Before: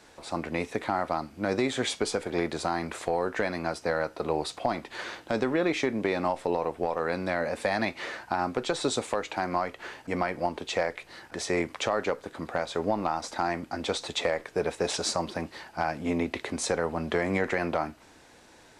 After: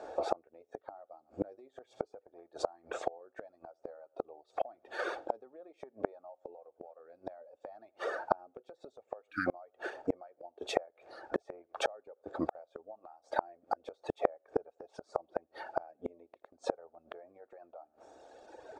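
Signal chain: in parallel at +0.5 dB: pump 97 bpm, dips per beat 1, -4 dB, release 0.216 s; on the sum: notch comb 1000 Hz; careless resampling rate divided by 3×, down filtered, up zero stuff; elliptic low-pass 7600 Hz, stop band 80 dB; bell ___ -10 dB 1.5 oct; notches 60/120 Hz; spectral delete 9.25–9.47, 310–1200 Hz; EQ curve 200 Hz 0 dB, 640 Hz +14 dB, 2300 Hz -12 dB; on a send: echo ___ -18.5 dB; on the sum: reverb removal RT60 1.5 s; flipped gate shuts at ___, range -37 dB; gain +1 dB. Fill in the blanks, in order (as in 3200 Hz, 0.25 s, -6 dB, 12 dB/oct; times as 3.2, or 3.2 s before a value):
170 Hz, 83 ms, -18 dBFS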